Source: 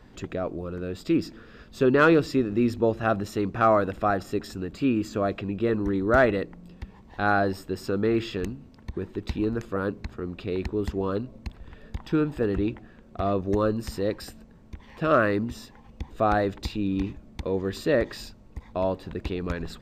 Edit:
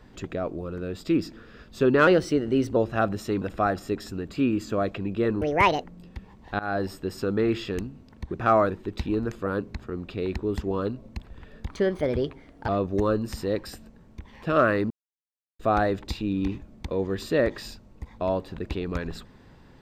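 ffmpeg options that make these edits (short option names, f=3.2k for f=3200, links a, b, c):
-filter_complex "[0:a]asplit=13[a][b][c][d][e][f][g][h][i][j][k][l][m];[a]atrim=end=2.074[n];[b]atrim=start=2.07:end=2.84,asetpts=PTS-STARTPTS,asetrate=48951,aresample=44100[o];[c]atrim=start=2.836:end=3.492[p];[d]atrim=start=3.848:end=5.854[q];[e]atrim=start=5.85:end=6.5,asetpts=PTS-STARTPTS,asetrate=67032,aresample=44100[r];[f]atrim=start=6.496:end=7.25,asetpts=PTS-STARTPTS,afade=t=out:st=0.75:d=0.004:c=hsin:silence=0.0841395[s];[g]atrim=start=7.25:end=9.002,asetpts=PTS-STARTPTS,afade=t=in:d=0.38:c=qsin:silence=0.0841395[t];[h]atrim=start=3.488:end=3.852[u];[i]atrim=start=8.998:end=11.994[v];[j]atrim=start=11.99:end=13.23,asetpts=PTS-STARTPTS,asetrate=55125,aresample=44100,atrim=end_sample=43747,asetpts=PTS-STARTPTS[w];[k]atrim=start=13.226:end=15.45,asetpts=PTS-STARTPTS,afade=t=out:st=2.22:d=0.004:c=hsin[x];[l]atrim=start=15.45:end=16.14,asetpts=PTS-STARTPTS,volume=0[y];[m]atrim=start=16.14,asetpts=PTS-STARTPTS,afade=t=in:d=0.004:c=hsin[z];[n][o]acrossfade=d=0.004:c1=hsin:c2=hsin[aa];[aa][p]acrossfade=d=0.004:c1=hsin:c2=hsin[ab];[ab][q]acrossfade=d=0.004:c1=hsin:c2=hsin[ac];[ac][r]acrossfade=d=0.004:c1=hsin:c2=hsin[ad];[s][t]concat=n=2:v=0:a=1[ae];[ad][ae]acrossfade=d=0.004:c1=hsin:c2=hsin[af];[af][u]acrossfade=d=0.004:c1=hsin:c2=hsin[ag];[ag][v]acrossfade=d=0.004:c1=hsin:c2=hsin[ah];[ah][w]acrossfade=d=0.004:c1=hsin:c2=hsin[ai];[x][y][z]concat=n=3:v=0:a=1[aj];[ai][aj]acrossfade=d=0.004:c1=hsin:c2=hsin"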